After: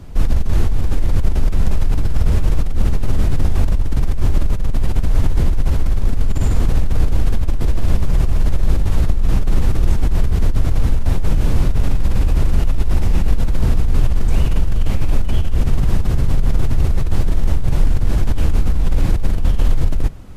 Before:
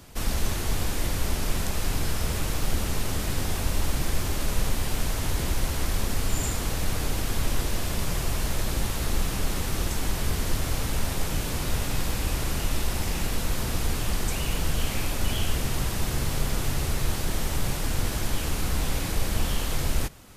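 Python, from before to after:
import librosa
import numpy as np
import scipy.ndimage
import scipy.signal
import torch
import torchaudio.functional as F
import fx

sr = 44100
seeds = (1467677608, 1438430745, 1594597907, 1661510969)

y = fx.over_compress(x, sr, threshold_db=-27.0, ratio=-1.0)
y = fx.tilt_eq(y, sr, slope=-3.0)
y = y * 10.0 ** (1.5 / 20.0)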